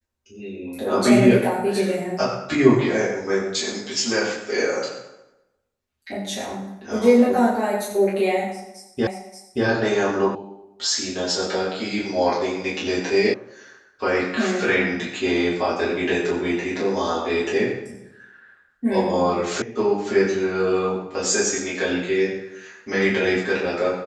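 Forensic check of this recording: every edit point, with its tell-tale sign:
9.07 s: repeat of the last 0.58 s
10.35 s: sound stops dead
13.34 s: sound stops dead
19.62 s: sound stops dead

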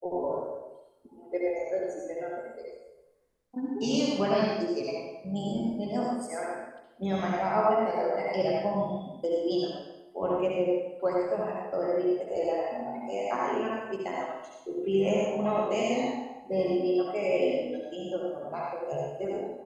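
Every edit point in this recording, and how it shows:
no edits

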